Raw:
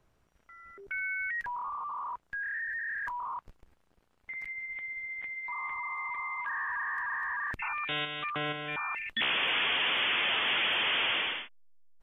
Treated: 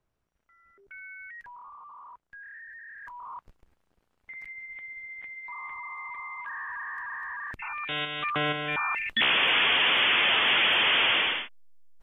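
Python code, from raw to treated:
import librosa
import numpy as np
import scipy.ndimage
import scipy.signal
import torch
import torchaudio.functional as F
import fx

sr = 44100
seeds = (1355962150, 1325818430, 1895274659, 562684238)

y = fx.gain(x, sr, db=fx.line((2.96, -10.0), (3.37, -2.5), (7.59, -2.5), (8.36, 6.0)))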